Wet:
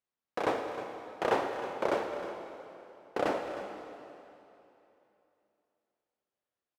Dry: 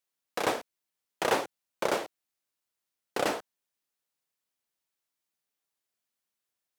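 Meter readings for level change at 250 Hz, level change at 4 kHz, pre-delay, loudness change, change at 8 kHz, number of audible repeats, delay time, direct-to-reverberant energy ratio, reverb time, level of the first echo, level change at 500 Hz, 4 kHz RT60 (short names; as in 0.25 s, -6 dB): +0.5 dB, -7.5 dB, 26 ms, -2.5 dB, -13.0 dB, 1, 0.311 s, 4.0 dB, 3.0 s, -13.5 dB, +0.5 dB, 2.7 s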